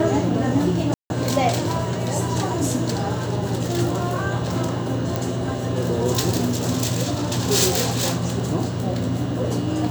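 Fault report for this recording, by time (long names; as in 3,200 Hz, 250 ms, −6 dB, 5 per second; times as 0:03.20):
0:00.94–0:01.10: drop-out 161 ms
0:05.16: click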